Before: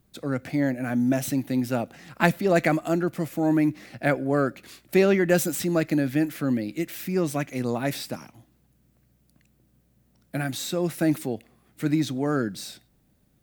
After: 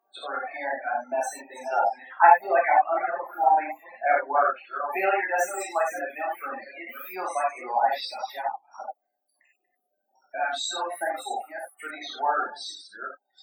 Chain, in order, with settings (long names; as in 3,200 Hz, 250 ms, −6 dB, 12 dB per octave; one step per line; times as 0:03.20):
delay that plays each chunk backwards 353 ms, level −7.5 dB
in parallel at +1 dB: downward compressor, threshold −34 dBFS, peak gain reduction 18.5 dB
on the sum: spectral peaks only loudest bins 32
four-pole ladder high-pass 780 Hz, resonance 75%
reverb whose tail is shaped and stops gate 120 ms flat, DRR −5.5 dB
reverb reduction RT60 1.7 s
level +7 dB